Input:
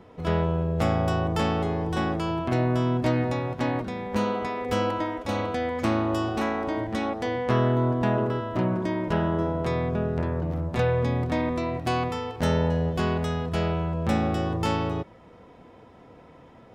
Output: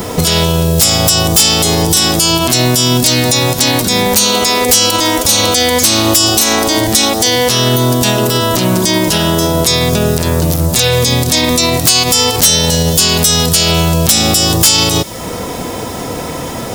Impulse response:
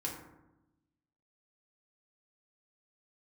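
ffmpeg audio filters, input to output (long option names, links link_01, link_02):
-filter_complex "[0:a]highshelf=frequency=4800:gain=10,acrossover=split=3500[link_01][link_02];[link_01]acompressor=threshold=-38dB:ratio=6[link_03];[link_02]crystalizer=i=5:c=0[link_04];[link_03][link_04]amix=inputs=2:normalize=0,aeval=exprs='0.562*sin(PI/2*3.98*val(0)/0.562)':channel_layout=same,alimiter=level_in=13.5dB:limit=-1dB:release=50:level=0:latency=1,volume=-1dB"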